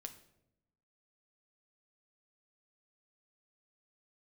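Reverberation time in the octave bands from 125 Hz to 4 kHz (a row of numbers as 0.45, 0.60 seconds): 1.2, 1.2, 0.95, 0.70, 0.60, 0.55 seconds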